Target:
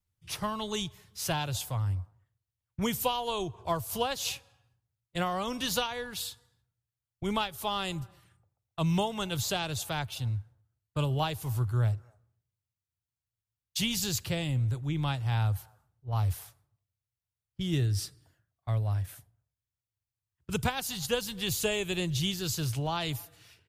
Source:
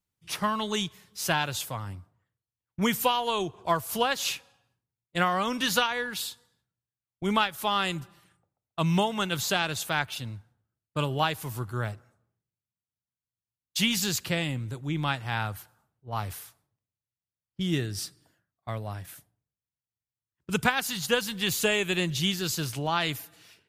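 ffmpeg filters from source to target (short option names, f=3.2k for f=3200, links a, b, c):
-filter_complex "[0:a]lowshelf=f=140:t=q:w=1.5:g=9.5,acrossover=split=410|1100|2500[a][b][c][d];[b]aecho=1:1:254:0.0668[e];[c]acompressor=threshold=-49dB:ratio=6[f];[a][e][f][d]amix=inputs=4:normalize=0,volume=-2.5dB"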